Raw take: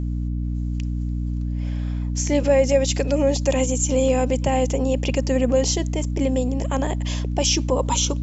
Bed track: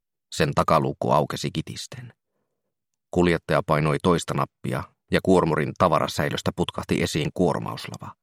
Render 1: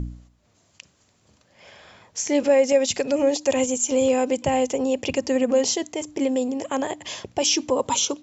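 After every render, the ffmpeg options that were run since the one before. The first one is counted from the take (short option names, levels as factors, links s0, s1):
-af "bandreject=f=60:t=h:w=4,bandreject=f=120:t=h:w=4,bandreject=f=180:t=h:w=4,bandreject=f=240:t=h:w=4,bandreject=f=300:t=h:w=4"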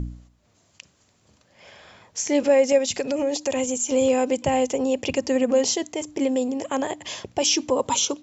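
-filter_complex "[0:a]asettb=1/sr,asplit=3[s0][s1][s2];[s0]atrim=end=2.784[s3];[s1]atrim=start=2.78:end=3.9,asetpts=PTS-STARTPTS,afade=t=in:d=0.004:c=qsin,afade=t=out:st=1.116:d=0.004:c=qsin,acompressor=threshold=0.0891:ratio=2.5:attack=3.2:release=140:knee=1:detection=peak[s4];[s2]atrim=start=3.896[s5];[s3][s4]acrossfade=d=0.004:c1=hsin:c2=qsin[s6];[s6][s5]acrossfade=d=0.004:c1=qsin:c2=hsin"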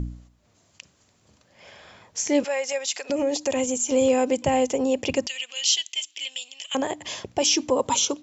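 -filter_complex "[0:a]asettb=1/sr,asplit=3[s0][s1][s2];[s0]atrim=end=2.444[s3];[s1]atrim=start=2.44:end=3.1,asetpts=PTS-STARTPTS,afade=t=in:d=0.004:c=qsin,afade=t=out:st=0.656:d=0.004:c=qsin,highpass=970[s4];[s2]atrim=start=3.096[s5];[s3][s4]acrossfade=d=0.004:c1=hsin:c2=qsin[s6];[s6][s5]acrossfade=d=0.004:c1=qsin:c2=hsin,asettb=1/sr,asplit=3[s7][s8][s9];[s7]atrim=end=5.274[s10];[s8]atrim=start=5.27:end=6.75,asetpts=PTS-STARTPTS,afade=t=in:d=0.004:c=qsin,afade=t=out:st=1.476:d=0.004:c=qsin,highpass=f=3000:t=q:w=4.9[s11];[s9]atrim=start=6.746[s12];[s10][s11]acrossfade=d=0.004:c1=hsin:c2=qsin[s13];[s13][s12]acrossfade=d=0.004:c1=qsin:c2=hsin"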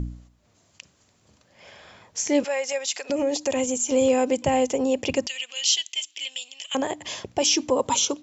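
-af anull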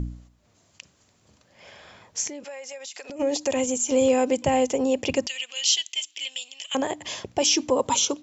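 -filter_complex "[0:a]asplit=3[s0][s1][s2];[s0]afade=t=out:st=2.27:d=0.02[s3];[s1]acompressor=threshold=0.02:ratio=12:attack=3.2:release=140:knee=1:detection=peak,afade=t=in:st=2.27:d=0.02,afade=t=out:st=3.19:d=0.02[s4];[s2]afade=t=in:st=3.19:d=0.02[s5];[s3][s4][s5]amix=inputs=3:normalize=0"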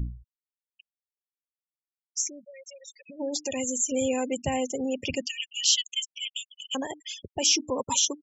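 -af "equalizer=f=570:w=0.46:g=-8,afftfilt=real='re*gte(hypot(re,im),0.0316)':imag='im*gte(hypot(re,im),0.0316)':win_size=1024:overlap=0.75"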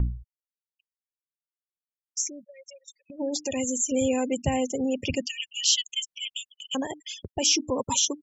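-af "agate=range=0.141:threshold=0.00501:ratio=16:detection=peak,lowshelf=f=250:g=7"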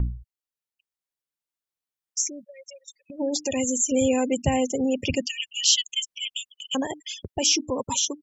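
-af "dynaudnorm=f=140:g=13:m=1.41"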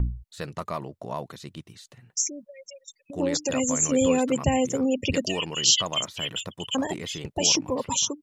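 -filter_complex "[1:a]volume=0.224[s0];[0:a][s0]amix=inputs=2:normalize=0"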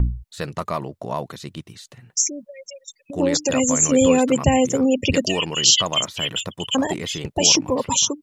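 -af "volume=2,alimiter=limit=0.794:level=0:latency=1"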